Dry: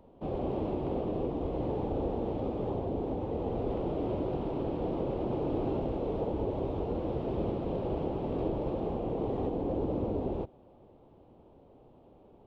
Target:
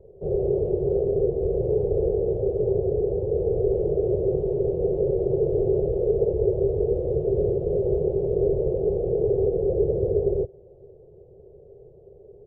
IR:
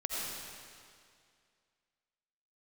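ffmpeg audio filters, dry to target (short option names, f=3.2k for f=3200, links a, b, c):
-af "firequalizer=gain_entry='entry(150,0);entry(270,-28);entry(390,9);entry(960,-27)':delay=0.05:min_phase=1,volume=8dB"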